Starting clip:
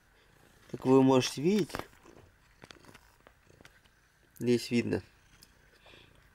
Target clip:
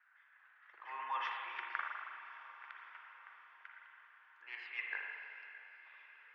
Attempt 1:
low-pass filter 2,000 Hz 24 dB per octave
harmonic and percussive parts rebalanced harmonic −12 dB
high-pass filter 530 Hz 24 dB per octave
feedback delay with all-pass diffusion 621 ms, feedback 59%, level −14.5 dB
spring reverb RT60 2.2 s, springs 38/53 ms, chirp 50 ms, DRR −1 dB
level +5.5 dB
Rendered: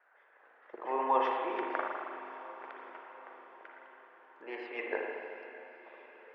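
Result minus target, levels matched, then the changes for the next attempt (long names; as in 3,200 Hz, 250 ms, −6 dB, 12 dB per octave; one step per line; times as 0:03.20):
500 Hz band +19.5 dB
change: high-pass filter 1,300 Hz 24 dB per octave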